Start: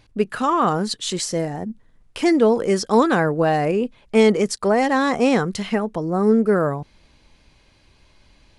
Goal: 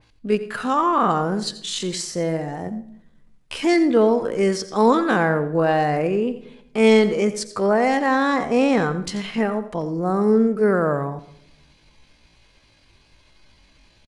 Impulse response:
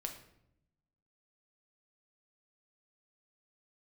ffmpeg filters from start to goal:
-filter_complex "[0:a]equalizer=frequency=3600:width=0.37:gain=3.5,atempo=0.61,asplit=2[link_01][link_02];[link_02]adelay=110,highpass=300,lowpass=3400,asoftclip=type=hard:threshold=-12dB,volume=-23dB[link_03];[link_01][link_03]amix=inputs=2:normalize=0,asplit=2[link_04][link_05];[1:a]atrim=start_sample=2205,adelay=86[link_06];[link_05][link_06]afir=irnorm=-1:irlink=0,volume=-11.5dB[link_07];[link_04][link_07]amix=inputs=2:normalize=0,adynamicequalizer=threshold=0.02:dfrequency=2400:dqfactor=0.7:tfrequency=2400:tqfactor=0.7:attack=5:release=100:ratio=0.375:range=3:mode=cutabove:tftype=highshelf,volume=-1.5dB"

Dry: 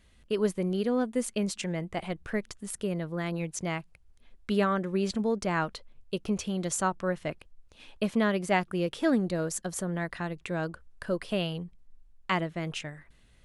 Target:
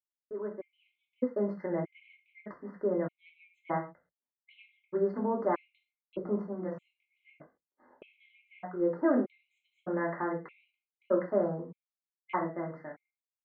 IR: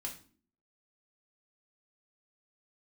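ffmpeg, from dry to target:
-filter_complex "[0:a]highpass=340,agate=range=-36dB:threshold=-57dB:ratio=16:detection=peak,lowpass=frequency=1500:width=0.5412,lowpass=frequency=1500:width=1.3066,dynaudnorm=framelen=220:gausssize=9:maxgain=12.5dB,alimiter=limit=-9dB:level=0:latency=1:release=465,asettb=1/sr,asplit=3[link_01][link_02][link_03];[link_01]atrim=end=6.374[link_04];[link_02]atrim=start=6.37:end=8.8,asetpts=PTS-STARTPTS,afade=type=in:duration=0.004:curve=qsin,afade=type=out:start_time=2.426:duration=0.004:curve=qsin,flanger=delay=19:depth=4.2:speed=1[link_05];[link_03]atrim=start=8.796[link_06];[link_04][link_05]acrossfade=duration=0.004:curve1=hsin:curve2=qsin[link_07];[link_07][link_06]acrossfade=duration=0.004:curve1=qsin:curve2=hsin[link_08];[1:a]atrim=start_sample=2205,atrim=end_sample=6174[link_09];[link_08][link_09]afir=irnorm=-1:irlink=0,afftfilt=real='re*gt(sin(2*PI*0.81*pts/sr)*(1-2*mod(floor(b*sr/1024/2100),2)),0)':imag='im*gt(sin(2*PI*0.81*pts/sr)*(1-2*mod(floor(b*sr/1024/2100),2)),0)':win_size=1024:overlap=0.75,volume=-5.5dB"

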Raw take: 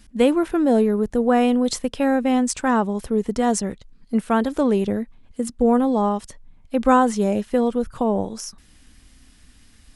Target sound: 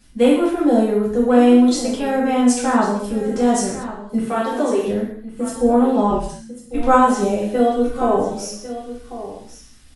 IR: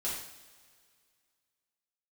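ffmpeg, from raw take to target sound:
-filter_complex "[0:a]asettb=1/sr,asplit=3[link_01][link_02][link_03];[link_01]atrim=end=4.194[link_04];[link_02]atrim=start=4.19:end=4.85,asetpts=PTS-STARTPTS,afade=type=in:duration=0.004:curve=qsin,afade=type=out:start_time=0.656:duration=0.004:curve=qsin,highpass=frequency=290:width=0.5412,highpass=frequency=290:width=1.3066[link_05];[link_03]atrim=start=4.846[link_06];[link_04][link_05]acrossfade=duration=0.004:curve1=hsin:curve2=qsin[link_07];[link_07][link_06]acrossfade=duration=0.004:curve1=qsin:curve2=hsin,asettb=1/sr,asplit=3[link_08][link_09][link_10];[link_08]atrim=end=6.104[link_11];[link_09]atrim=start=6.1:end=6.82,asetpts=PTS-STARTPTS,afade=type=in:duration=0.004:curve=qsin,afade=type=out:start_time=0.716:duration=0.004:curve=qsin,afreqshift=-240[link_12];[link_10]atrim=start=6.816[link_13];[link_11][link_12]acrossfade=duration=0.004:curve1=hsin:curve2=qsin[link_14];[link_14][link_13]acrossfade=duration=0.004:curve1=qsin:curve2=hsin,asettb=1/sr,asplit=3[link_15][link_16][link_17];[link_15]atrim=end=7.554[link_18];[link_16]atrim=start=7.55:end=8.16,asetpts=PTS-STARTPTS,afade=type=in:duration=0.004:curve=qsin,afade=type=out:start_time=0.606:duration=0.004:curve=qsin,aecho=1:1:2.7:0.86,atrim=end_sample=26901[link_19];[link_17]atrim=start=8.156[link_20];[link_18][link_19]acrossfade=duration=0.004:curve1=hsin:curve2=qsin[link_21];[link_21][link_20]acrossfade=duration=0.004:curve1=qsin:curve2=hsin,aecho=1:1:1099:0.211[link_22];[1:a]atrim=start_sample=2205,afade=type=out:start_time=0.3:duration=0.01,atrim=end_sample=13671[link_23];[link_22][link_23]afir=irnorm=-1:irlink=0,volume=-1dB"

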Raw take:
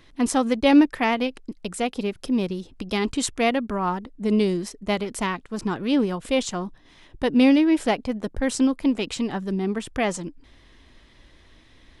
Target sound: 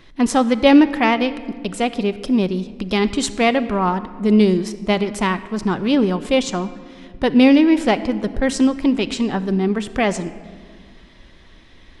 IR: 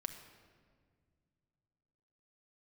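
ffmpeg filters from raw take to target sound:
-filter_complex "[0:a]asplit=2[link_01][link_02];[1:a]atrim=start_sample=2205,lowpass=7600[link_03];[link_02][link_03]afir=irnorm=-1:irlink=0,volume=1.5dB[link_04];[link_01][link_04]amix=inputs=2:normalize=0"

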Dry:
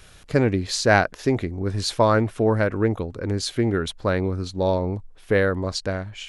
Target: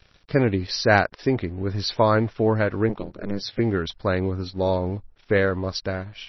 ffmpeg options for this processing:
ffmpeg -i in.wav -filter_complex "[0:a]aeval=exprs='sgn(val(0))*max(abs(val(0))-0.00376,0)':channel_layout=same,asettb=1/sr,asplit=3[link_01][link_02][link_03];[link_01]atrim=end=2.894[link_04];[link_02]atrim=start=2.89:end=3.59,asetpts=PTS-STARTPTS,afade=type=in:duration=0.004:curve=qsin,afade=type=out:start_time=0.696:duration=0.004:curve=qsin,aeval=exprs='val(0)*sin(2*PI*100*n/s)':channel_layout=same[link_05];[link_03]atrim=start=3.586[link_06];[link_04][link_05]acrossfade=duration=0.004:curve1=hsin:curve2=qsin[link_07];[link_07][link_06]acrossfade=duration=0.004:curve1=qsin:curve2=hsin" -ar 22050 -c:a libmp3lame -b:a 24k out.mp3

